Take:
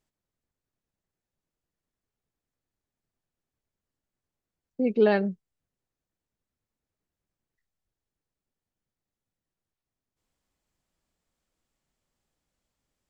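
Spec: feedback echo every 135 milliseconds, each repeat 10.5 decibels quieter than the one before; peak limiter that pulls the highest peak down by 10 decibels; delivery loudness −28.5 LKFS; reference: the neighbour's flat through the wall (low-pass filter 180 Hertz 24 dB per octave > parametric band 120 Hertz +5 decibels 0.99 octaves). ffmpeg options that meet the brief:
ffmpeg -i in.wav -af "alimiter=limit=-20.5dB:level=0:latency=1,lowpass=frequency=180:width=0.5412,lowpass=frequency=180:width=1.3066,equalizer=frequency=120:width_type=o:width=0.99:gain=5,aecho=1:1:135|270|405:0.299|0.0896|0.0269,volume=10.5dB" out.wav

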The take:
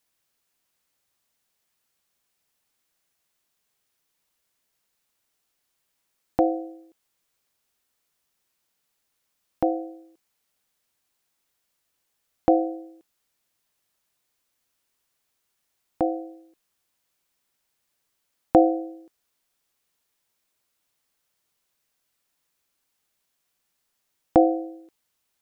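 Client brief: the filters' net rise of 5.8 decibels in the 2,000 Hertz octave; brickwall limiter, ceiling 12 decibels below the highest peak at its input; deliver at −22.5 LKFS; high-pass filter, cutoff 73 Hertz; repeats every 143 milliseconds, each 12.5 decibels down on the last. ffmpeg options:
ffmpeg -i in.wav -af "highpass=73,equalizer=frequency=2000:width_type=o:gain=7.5,alimiter=limit=-14.5dB:level=0:latency=1,aecho=1:1:143|286|429:0.237|0.0569|0.0137,volume=7dB" out.wav

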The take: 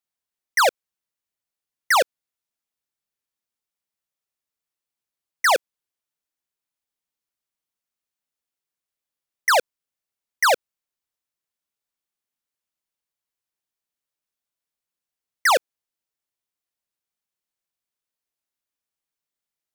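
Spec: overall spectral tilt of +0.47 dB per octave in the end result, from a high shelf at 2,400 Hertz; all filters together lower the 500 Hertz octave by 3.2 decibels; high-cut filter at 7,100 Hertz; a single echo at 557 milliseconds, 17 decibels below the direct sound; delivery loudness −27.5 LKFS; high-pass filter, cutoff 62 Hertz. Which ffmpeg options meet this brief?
ffmpeg -i in.wav -af "highpass=62,lowpass=7100,equalizer=frequency=500:width_type=o:gain=-4.5,highshelf=frequency=2400:gain=8,aecho=1:1:557:0.141,volume=-8.5dB" out.wav

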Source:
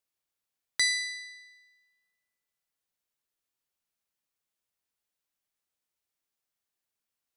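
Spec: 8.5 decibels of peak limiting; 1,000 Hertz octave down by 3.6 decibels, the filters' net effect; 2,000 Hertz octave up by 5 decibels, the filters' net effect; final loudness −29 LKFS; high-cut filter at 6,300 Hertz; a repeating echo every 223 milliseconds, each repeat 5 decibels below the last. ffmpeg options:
ffmpeg -i in.wav -af "lowpass=6300,equalizer=frequency=1000:width_type=o:gain=-7.5,equalizer=frequency=2000:width_type=o:gain=6.5,alimiter=limit=-21dB:level=0:latency=1,aecho=1:1:223|446|669|892|1115|1338|1561:0.562|0.315|0.176|0.0988|0.0553|0.031|0.0173,volume=1dB" out.wav

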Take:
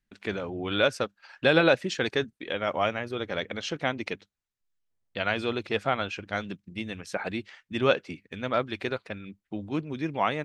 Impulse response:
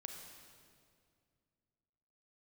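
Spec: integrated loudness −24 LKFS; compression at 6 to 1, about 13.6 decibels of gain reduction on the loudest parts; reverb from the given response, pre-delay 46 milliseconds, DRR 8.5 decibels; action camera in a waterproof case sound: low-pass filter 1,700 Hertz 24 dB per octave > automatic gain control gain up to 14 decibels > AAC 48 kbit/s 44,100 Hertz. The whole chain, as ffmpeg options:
-filter_complex "[0:a]acompressor=threshold=-31dB:ratio=6,asplit=2[link_01][link_02];[1:a]atrim=start_sample=2205,adelay=46[link_03];[link_02][link_03]afir=irnorm=-1:irlink=0,volume=-5dB[link_04];[link_01][link_04]amix=inputs=2:normalize=0,lowpass=frequency=1700:width=0.5412,lowpass=frequency=1700:width=1.3066,dynaudnorm=maxgain=14dB,volume=14dB" -ar 44100 -c:a aac -b:a 48k

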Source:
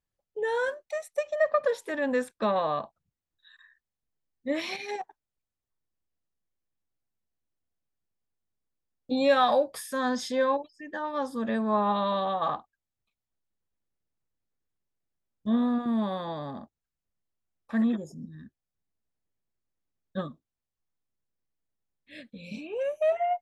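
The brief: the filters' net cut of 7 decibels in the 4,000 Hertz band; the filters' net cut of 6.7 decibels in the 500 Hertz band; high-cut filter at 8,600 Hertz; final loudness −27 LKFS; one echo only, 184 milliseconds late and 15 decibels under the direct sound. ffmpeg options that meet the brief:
ffmpeg -i in.wav -af "lowpass=8600,equalizer=frequency=500:width_type=o:gain=-8,equalizer=frequency=4000:width_type=o:gain=-8,aecho=1:1:184:0.178,volume=5dB" out.wav

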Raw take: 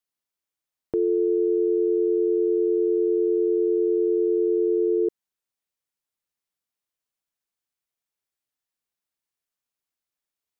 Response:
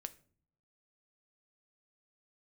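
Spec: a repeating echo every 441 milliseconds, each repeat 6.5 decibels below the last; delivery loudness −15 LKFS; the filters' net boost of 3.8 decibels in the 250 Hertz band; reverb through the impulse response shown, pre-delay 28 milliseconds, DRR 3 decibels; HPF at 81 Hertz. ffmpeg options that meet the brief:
-filter_complex "[0:a]highpass=81,equalizer=frequency=250:width_type=o:gain=7.5,aecho=1:1:441|882|1323|1764|2205|2646:0.473|0.222|0.105|0.0491|0.0231|0.0109,asplit=2[link_01][link_02];[1:a]atrim=start_sample=2205,adelay=28[link_03];[link_02][link_03]afir=irnorm=-1:irlink=0,volume=1dB[link_04];[link_01][link_04]amix=inputs=2:normalize=0,volume=2dB"

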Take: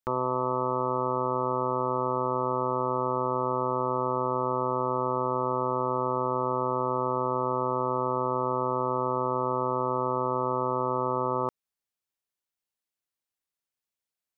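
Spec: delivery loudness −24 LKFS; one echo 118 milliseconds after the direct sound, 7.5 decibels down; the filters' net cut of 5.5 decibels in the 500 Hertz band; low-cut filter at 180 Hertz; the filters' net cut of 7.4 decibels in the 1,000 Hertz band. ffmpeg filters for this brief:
ffmpeg -i in.wav -af "highpass=180,equalizer=frequency=500:width_type=o:gain=-5,equalizer=frequency=1000:width_type=o:gain=-7.5,aecho=1:1:118:0.422,volume=7.5dB" out.wav

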